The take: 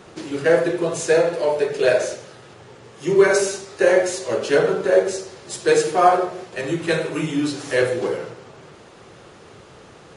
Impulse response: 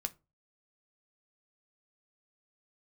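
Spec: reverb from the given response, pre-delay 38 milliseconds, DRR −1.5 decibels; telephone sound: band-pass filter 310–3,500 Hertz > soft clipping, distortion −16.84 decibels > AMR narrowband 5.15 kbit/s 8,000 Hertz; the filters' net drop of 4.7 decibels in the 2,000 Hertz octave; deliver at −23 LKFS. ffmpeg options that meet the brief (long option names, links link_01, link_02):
-filter_complex "[0:a]equalizer=frequency=2000:width_type=o:gain=-6,asplit=2[link_01][link_02];[1:a]atrim=start_sample=2205,adelay=38[link_03];[link_02][link_03]afir=irnorm=-1:irlink=0,volume=2dB[link_04];[link_01][link_04]amix=inputs=2:normalize=0,highpass=310,lowpass=3500,asoftclip=threshold=-7dB,volume=-2dB" -ar 8000 -c:a libopencore_amrnb -b:a 5150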